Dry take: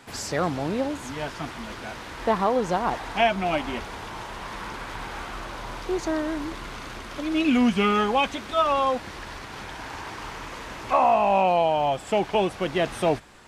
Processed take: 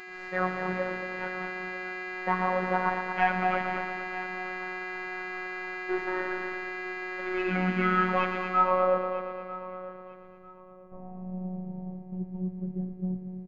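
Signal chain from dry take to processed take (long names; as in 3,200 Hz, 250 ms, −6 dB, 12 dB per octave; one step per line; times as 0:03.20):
stylus tracing distortion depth 0.046 ms
downward expander −26 dBFS
upward compression, threshold −42 dBFS
hum with harmonics 400 Hz, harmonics 20, −36 dBFS −1 dB per octave
low-pass filter sweep 1,700 Hz → 160 Hz, 0:08.45–0:09.42
on a send: echo machine with several playback heads 115 ms, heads first and second, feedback 58%, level −12.5 dB
on the sum: phases set to zero 184 Hz
repeating echo 947 ms, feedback 29%, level −19 dB
level −4.5 dB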